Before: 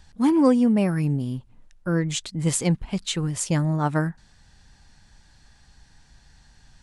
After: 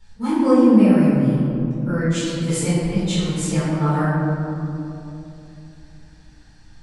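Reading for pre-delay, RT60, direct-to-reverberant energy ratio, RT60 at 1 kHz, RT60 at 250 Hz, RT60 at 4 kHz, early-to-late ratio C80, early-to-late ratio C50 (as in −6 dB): 4 ms, 2.9 s, −12.5 dB, 2.6 s, 3.8 s, 1.3 s, −0.5 dB, −2.5 dB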